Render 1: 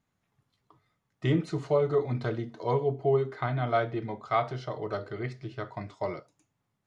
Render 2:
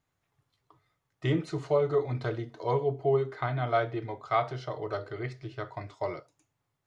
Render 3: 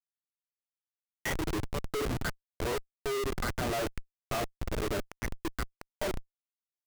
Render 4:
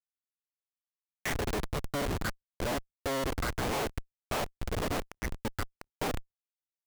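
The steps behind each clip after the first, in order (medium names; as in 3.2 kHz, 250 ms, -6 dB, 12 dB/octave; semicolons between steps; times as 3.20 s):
peaking EQ 210 Hz -14 dB 0.39 oct
LFO high-pass square 1.8 Hz 300–1700 Hz; resonant high shelf 4.1 kHz +7.5 dB, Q 1.5; Schmitt trigger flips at -33.5 dBFS
cycle switcher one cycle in 3, inverted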